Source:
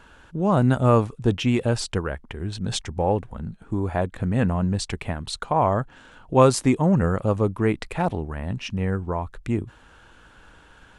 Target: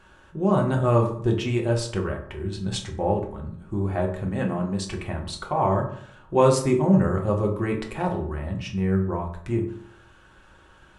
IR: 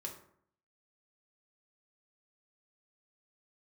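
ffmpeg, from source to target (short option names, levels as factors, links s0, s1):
-filter_complex "[0:a]asettb=1/sr,asplit=3[s0][s1][s2];[s0]atrim=end=4.254[s3];[s1]atrim=start=4.25:end=4.86,asetpts=PTS-STARTPTS,afade=t=in:d=0.004:c=qsin,afade=t=out:st=0.606:d=0.004:c=qsin,highpass=150[s4];[s2]atrim=start=4.856[s5];[s3][s4]acrossfade=d=0.004:c1=hsin:c2=qsin[s6];[s6][s5]acrossfade=d=0.004:c1=qsin:c2=hsin[s7];[1:a]atrim=start_sample=2205[s8];[s7][s8]afir=irnorm=-1:irlink=0"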